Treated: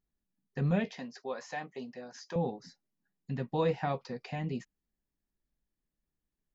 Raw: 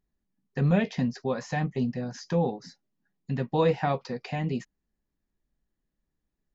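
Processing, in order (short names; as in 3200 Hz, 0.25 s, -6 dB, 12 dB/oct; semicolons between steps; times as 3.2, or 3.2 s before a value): 0.94–2.36 HPF 420 Hz 12 dB/oct; gain -6 dB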